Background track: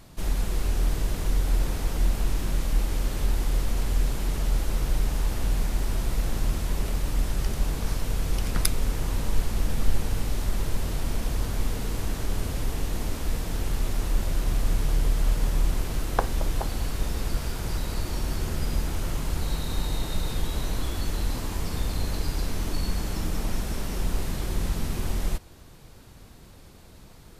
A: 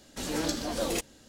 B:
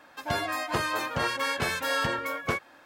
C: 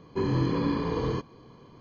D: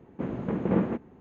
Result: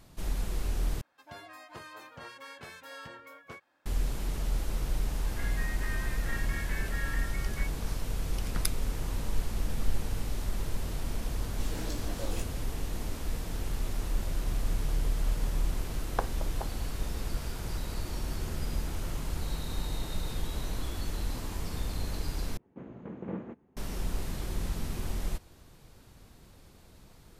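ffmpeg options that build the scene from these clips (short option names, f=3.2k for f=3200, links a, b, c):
-filter_complex "[2:a]asplit=2[a][b];[0:a]volume=-6dB[c];[b]bandpass=f=1.9k:t=q:w=7.3:csg=0[d];[1:a]flanger=delay=16.5:depth=5.6:speed=1.7[e];[c]asplit=3[f][g][h];[f]atrim=end=1.014[i];[a]atrim=end=2.85,asetpts=PTS-STARTPTS,volume=-18dB[j];[g]atrim=start=3.856:end=22.574[k];[4:a]atrim=end=1.2,asetpts=PTS-STARTPTS,volume=-13dB[l];[h]atrim=start=23.766[m];[d]atrim=end=2.85,asetpts=PTS-STARTPTS,volume=-2dB,afade=t=in:d=0.004:c=hsin,afade=t=out:st=2.846:d=0.004:c=hsin,adelay=224469S[n];[e]atrim=end=1.28,asetpts=PTS-STARTPTS,volume=-8dB,afade=t=in:d=0.004:c=hsin,afade=t=out:st=1.276:d=0.004:c=hsin,adelay=11410[o];[i][j]acrossfade=d=0.004:c1=hsin:c2=hsin[p];[p][k]acrossfade=d=0.004:c1=hsin:c2=hsin[q];[q][l]acrossfade=d=0.004:c1=hsin:c2=hsin[r];[r][m]acrossfade=d=0.004:c1=hsin:c2=hsin[s];[s][n][o]amix=inputs=3:normalize=0"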